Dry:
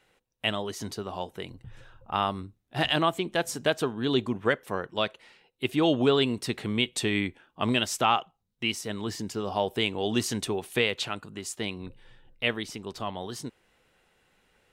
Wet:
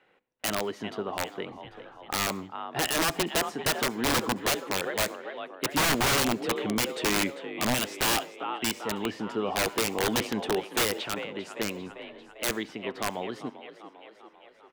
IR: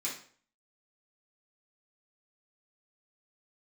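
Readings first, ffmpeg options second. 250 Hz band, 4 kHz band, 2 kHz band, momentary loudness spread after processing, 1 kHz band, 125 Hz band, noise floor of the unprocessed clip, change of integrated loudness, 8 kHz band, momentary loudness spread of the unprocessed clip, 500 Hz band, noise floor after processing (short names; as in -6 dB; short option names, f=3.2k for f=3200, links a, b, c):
-2.0 dB, 0.0 dB, +1.5 dB, 14 LU, 0.0 dB, -3.5 dB, -74 dBFS, 0.0 dB, +7.0 dB, 12 LU, -2.0 dB, -55 dBFS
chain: -filter_complex "[0:a]acrossover=split=170 3100:gain=0.141 1 0.1[a][b][c];[a][b][c]amix=inputs=3:normalize=0,asplit=7[d][e][f][g][h][i][j];[e]adelay=396,afreqshift=45,volume=-13.5dB[k];[f]adelay=792,afreqshift=90,volume=-18.1dB[l];[g]adelay=1188,afreqshift=135,volume=-22.7dB[m];[h]adelay=1584,afreqshift=180,volume=-27.2dB[n];[i]adelay=1980,afreqshift=225,volume=-31.8dB[o];[j]adelay=2376,afreqshift=270,volume=-36.4dB[p];[d][k][l][m][n][o][p]amix=inputs=7:normalize=0,aeval=exprs='(mod(12.6*val(0)+1,2)-1)/12.6':c=same,asplit=2[q][r];[1:a]atrim=start_sample=2205,adelay=67[s];[r][s]afir=irnorm=-1:irlink=0,volume=-25.5dB[t];[q][t]amix=inputs=2:normalize=0,volume=3dB"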